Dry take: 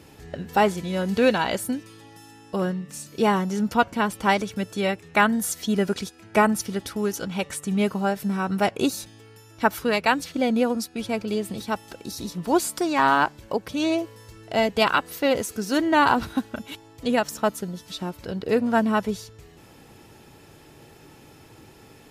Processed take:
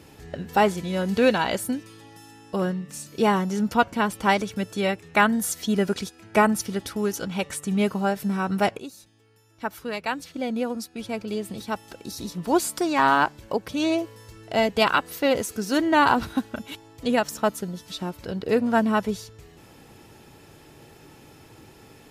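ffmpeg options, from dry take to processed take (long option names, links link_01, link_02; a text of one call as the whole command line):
ffmpeg -i in.wav -filter_complex "[0:a]asplit=2[link_01][link_02];[link_01]atrim=end=8.79,asetpts=PTS-STARTPTS,afade=type=out:start_time=8.786:duration=0.004:curve=hsin:silence=0.149624[link_03];[link_02]atrim=start=8.79,asetpts=PTS-STARTPTS,afade=type=in:duration=3.93:silence=0.149624[link_04];[link_03][link_04]concat=n=2:v=0:a=1" out.wav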